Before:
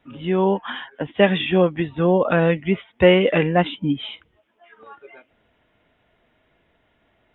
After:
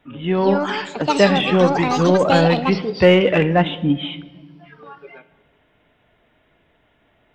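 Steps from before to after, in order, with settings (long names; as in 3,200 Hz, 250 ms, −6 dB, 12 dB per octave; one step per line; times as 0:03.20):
in parallel at −7 dB: soft clipping −18 dBFS, distortion −8 dB
on the sum: delay with pitch and tempo change per echo 281 ms, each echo +7 semitones, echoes 2, each echo −6 dB
rectangular room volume 1,300 cubic metres, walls mixed, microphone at 0.37 metres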